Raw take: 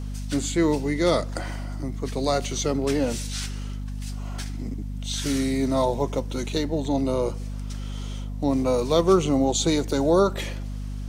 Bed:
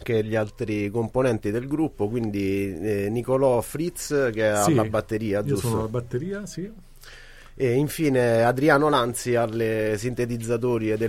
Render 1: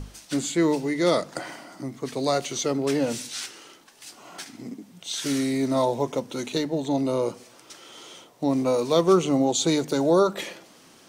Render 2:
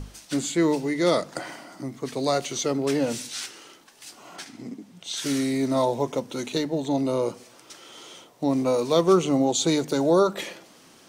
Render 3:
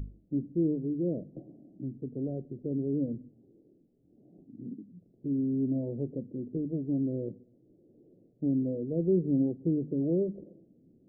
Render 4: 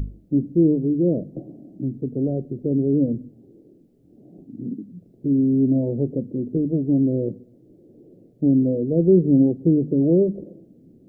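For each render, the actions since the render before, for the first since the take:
notches 50/100/150/200/250 Hz
4.36–5.17 high shelf 11000 Hz -9 dB
Gaussian blur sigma 25 samples
gain +11 dB

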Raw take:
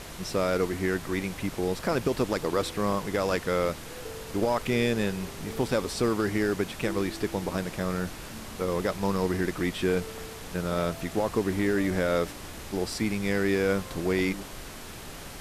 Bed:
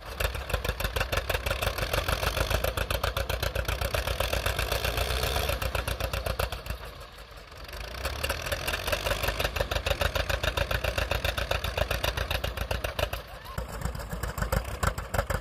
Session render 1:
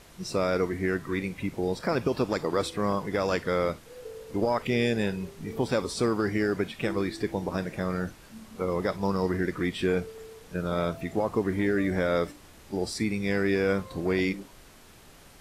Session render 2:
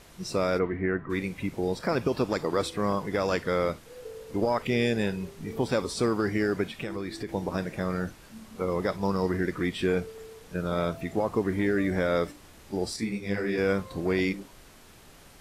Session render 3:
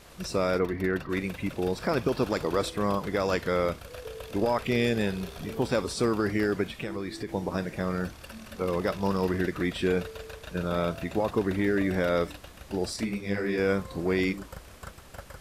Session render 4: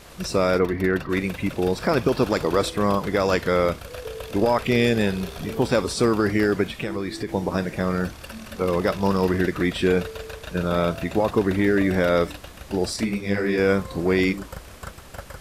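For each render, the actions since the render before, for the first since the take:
noise print and reduce 11 dB
0.58–1.09 LPF 3000 Hz -> 1800 Hz 24 dB/oct; 6.73–7.29 compressor 3:1, threshold -31 dBFS; 12.96–13.58 detuned doubles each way 48 cents
add bed -16 dB
gain +6 dB

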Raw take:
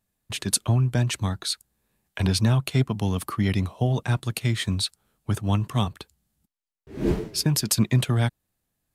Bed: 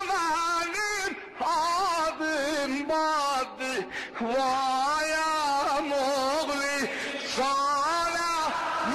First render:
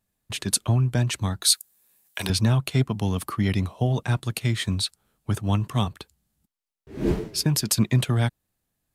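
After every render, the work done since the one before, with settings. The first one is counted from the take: 1.42–2.3 RIAA curve recording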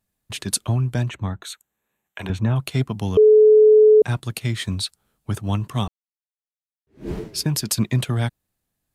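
1.09–2.56 running mean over 9 samples; 3.17–4.02 bleep 429 Hz -8 dBFS; 5.88–7.18 fade in exponential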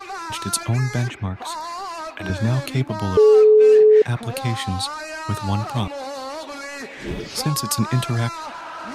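add bed -4.5 dB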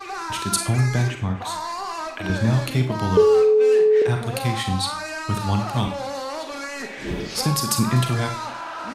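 echo 0.248 s -23.5 dB; Schroeder reverb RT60 0.4 s, combs from 32 ms, DRR 5.5 dB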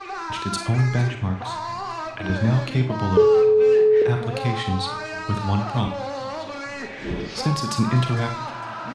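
air absorption 100 m; feedback echo 0.455 s, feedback 54%, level -21.5 dB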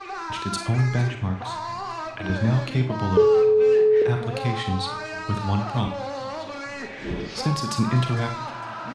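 gain -1.5 dB

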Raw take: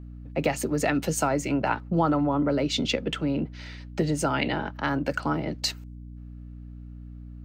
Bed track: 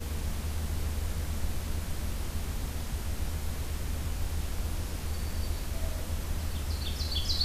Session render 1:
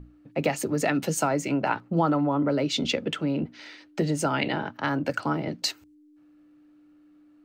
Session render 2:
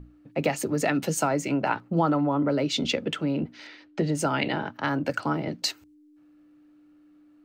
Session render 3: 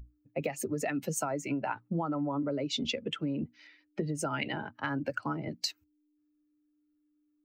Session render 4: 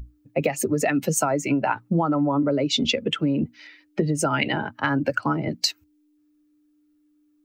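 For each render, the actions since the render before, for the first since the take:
notches 60/120/180/240 Hz
3.67–4.15 air absorption 93 m
per-bin expansion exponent 1.5; compressor, threshold -29 dBFS, peak gain reduction 9.5 dB
gain +10.5 dB

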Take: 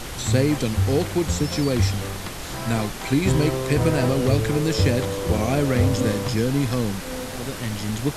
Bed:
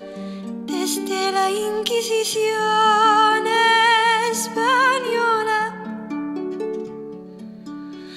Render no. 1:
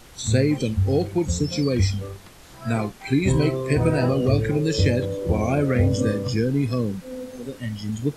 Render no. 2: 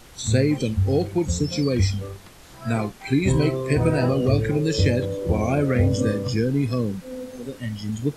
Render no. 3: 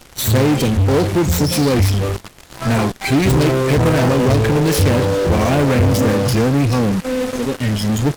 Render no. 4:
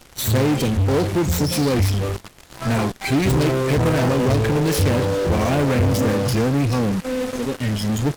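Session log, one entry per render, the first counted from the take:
noise print and reduce 14 dB
nothing audible
self-modulated delay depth 0.41 ms; in parallel at -4 dB: fuzz box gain 38 dB, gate -40 dBFS
gain -4 dB

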